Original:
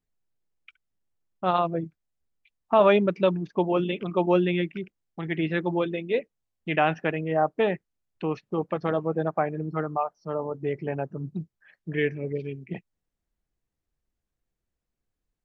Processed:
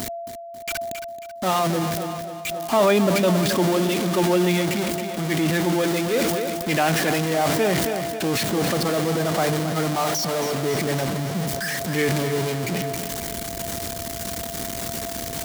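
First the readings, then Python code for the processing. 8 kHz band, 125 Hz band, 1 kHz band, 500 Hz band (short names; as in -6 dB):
n/a, +7.0 dB, +3.5 dB, +3.5 dB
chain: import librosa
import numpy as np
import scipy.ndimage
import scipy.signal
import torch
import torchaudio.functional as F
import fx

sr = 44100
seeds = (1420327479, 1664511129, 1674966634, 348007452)

y = x + 0.5 * 10.0 ** (-22.5 / 20.0) * np.sign(x)
y = fx.high_shelf(y, sr, hz=2200.0, db=7.5)
y = fx.echo_feedback(y, sr, ms=271, feedback_pct=53, wet_db=-11.0)
y = y + 10.0 ** (-32.0 / 20.0) * np.sin(2.0 * np.pi * 680.0 * np.arange(len(y)) / sr)
y = scipy.signal.sosfilt(scipy.signal.butter(2, 72.0, 'highpass', fs=sr, output='sos'), y)
y = fx.peak_eq(y, sr, hz=250.0, db=5.5, octaves=0.81)
y = fx.notch(y, sr, hz=2600.0, q=19.0)
y = fx.sustainer(y, sr, db_per_s=20.0)
y = F.gain(torch.from_numpy(y), -3.0).numpy()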